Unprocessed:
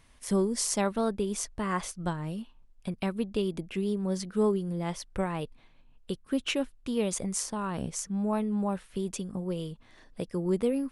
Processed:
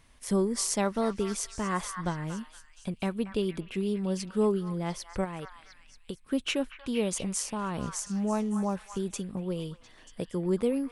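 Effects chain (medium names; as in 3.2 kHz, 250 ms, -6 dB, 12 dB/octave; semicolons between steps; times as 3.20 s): 5.24–6.21 s: compression, threshold -34 dBFS, peak gain reduction 7 dB; on a send: repeats whose band climbs or falls 234 ms, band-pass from 1.4 kHz, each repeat 0.7 oct, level -6 dB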